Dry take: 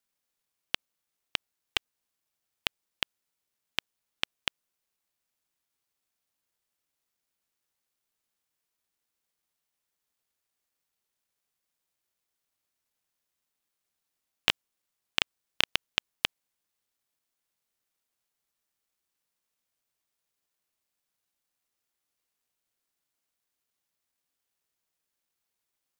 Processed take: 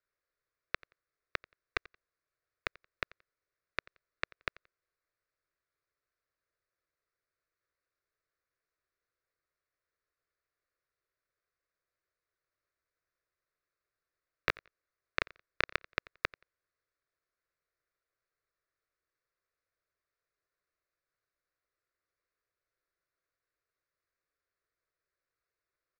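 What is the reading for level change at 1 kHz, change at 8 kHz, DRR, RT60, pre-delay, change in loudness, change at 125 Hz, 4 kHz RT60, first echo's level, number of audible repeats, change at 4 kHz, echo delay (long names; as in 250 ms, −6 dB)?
−0.5 dB, −17.0 dB, no reverb audible, no reverb audible, no reverb audible, −6.5 dB, −0.5 dB, no reverb audible, −23.0 dB, 1, −15.0 dB, 88 ms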